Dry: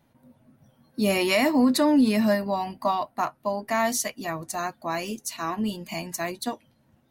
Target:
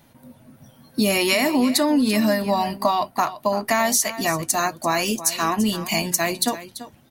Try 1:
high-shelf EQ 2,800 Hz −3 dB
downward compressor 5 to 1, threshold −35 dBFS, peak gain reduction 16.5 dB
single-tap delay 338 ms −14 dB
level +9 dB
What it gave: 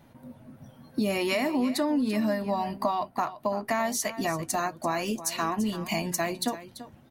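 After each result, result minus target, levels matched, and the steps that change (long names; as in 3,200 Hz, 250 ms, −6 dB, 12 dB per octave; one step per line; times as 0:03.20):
downward compressor: peak gain reduction +7 dB; 4,000 Hz band −3.0 dB
change: downward compressor 5 to 1, threshold −26 dBFS, peak gain reduction 9.5 dB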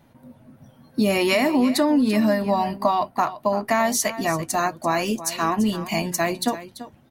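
4,000 Hz band −4.0 dB
change: high-shelf EQ 2,800 Hz +7.5 dB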